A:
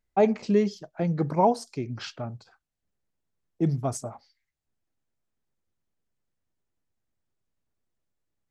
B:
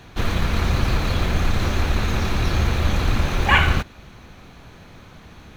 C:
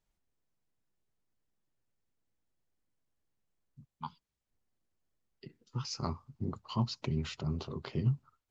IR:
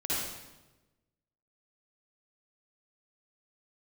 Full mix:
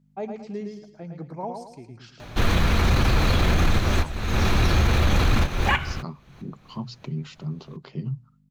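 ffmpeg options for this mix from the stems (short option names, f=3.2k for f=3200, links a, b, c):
-filter_complex "[0:a]volume=-12dB,asplit=2[a][b];[b]volume=-5.5dB[c];[1:a]adelay=2200,volume=3dB[d];[2:a]aeval=exprs='val(0)+0.00158*(sin(2*PI*50*n/s)+sin(2*PI*2*50*n/s)/2+sin(2*PI*3*50*n/s)/3+sin(2*PI*4*50*n/s)/4+sin(2*PI*5*50*n/s)/5)':c=same,lowshelf=f=110:t=q:w=3:g=-10,bandreject=f=60:t=h:w=6,bandreject=f=120:t=h:w=6,volume=-2dB,asplit=2[e][f];[f]apad=whole_len=342459[g];[d][g]sidechaincompress=threshold=-55dB:ratio=5:attack=23:release=280[h];[c]aecho=0:1:110|220|330|440|550:1|0.36|0.13|0.0467|0.0168[i];[a][h][e][i]amix=inputs=4:normalize=0,alimiter=limit=-11dB:level=0:latency=1:release=16"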